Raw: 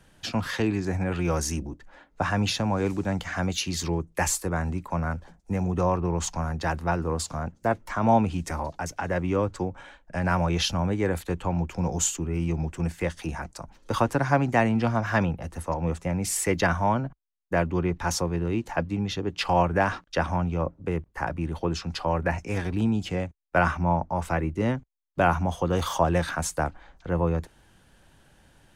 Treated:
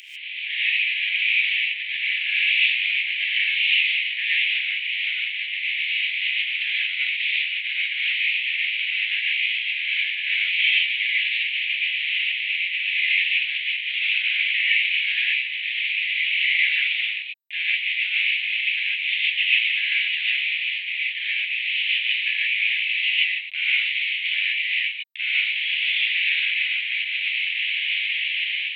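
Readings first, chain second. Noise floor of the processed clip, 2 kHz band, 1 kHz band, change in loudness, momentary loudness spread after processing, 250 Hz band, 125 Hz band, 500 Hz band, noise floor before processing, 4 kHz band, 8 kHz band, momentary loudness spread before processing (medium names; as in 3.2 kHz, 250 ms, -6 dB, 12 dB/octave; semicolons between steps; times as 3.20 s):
-30 dBFS, +14.5 dB, under -35 dB, +6.5 dB, 5 LU, under -40 dB, under -40 dB, under -40 dB, -60 dBFS, +16.0 dB, under -35 dB, 9 LU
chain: one-bit delta coder 16 kbps, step -27.5 dBFS; steep high-pass 2.1 kHz 72 dB/octave; level rider gain up to 13.5 dB; gated-style reverb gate 170 ms rising, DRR -5.5 dB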